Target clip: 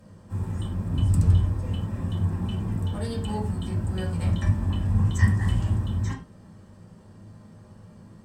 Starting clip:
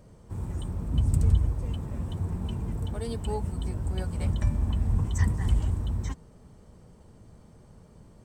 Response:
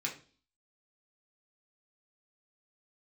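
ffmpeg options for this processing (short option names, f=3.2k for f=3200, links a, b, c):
-filter_complex "[1:a]atrim=start_sample=2205,atrim=end_sample=3969,asetrate=32634,aresample=44100[a];[0:a][a]afir=irnorm=-1:irlink=0"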